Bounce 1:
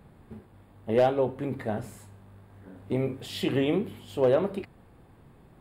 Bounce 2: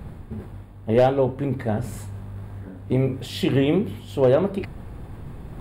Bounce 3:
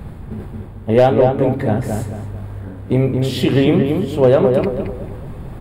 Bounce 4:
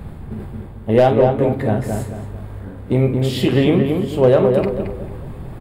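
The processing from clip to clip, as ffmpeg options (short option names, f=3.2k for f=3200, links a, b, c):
-af "lowshelf=f=120:g=12,areverse,acompressor=mode=upward:threshold=-31dB:ratio=2.5,areverse,volume=4dB"
-filter_complex "[0:a]asplit=2[a][b];[b]adelay=222,lowpass=f=1.8k:p=1,volume=-4dB,asplit=2[c][d];[d]adelay=222,lowpass=f=1.8k:p=1,volume=0.38,asplit=2[e][f];[f]adelay=222,lowpass=f=1.8k:p=1,volume=0.38,asplit=2[g][h];[h]adelay=222,lowpass=f=1.8k:p=1,volume=0.38,asplit=2[i][j];[j]adelay=222,lowpass=f=1.8k:p=1,volume=0.38[k];[a][c][e][g][i][k]amix=inputs=6:normalize=0,volume=5.5dB"
-filter_complex "[0:a]asplit=2[a][b];[b]adelay=45,volume=-12dB[c];[a][c]amix=inputs=2:normalize=0,volume=-1dB"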